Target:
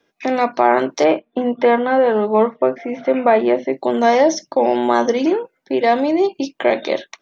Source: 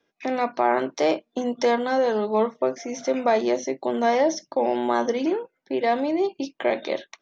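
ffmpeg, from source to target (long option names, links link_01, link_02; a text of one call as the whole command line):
ffmpeg -i in.wav -filter_complex "[0:a]asplit=3[link_01][link_02][link_03];[link_01]afade=type=out:start_time=1.03:duration=0.02[link_04];[link_02]lowpass=frequency=2900:width=0.5412,lowpass=frequency=2900:width=1.3066,afade=type=in:start_time=1.03:duration=0.02,afade=type=out:start_time=3.72:duration=0.02[link_05];[link_03]afade=type=in:start_time=3.72:duration=0.02[link_06];[link_04][link_05][link_06]amix=inputs=3:normalize=0,volume=7dB" out.wav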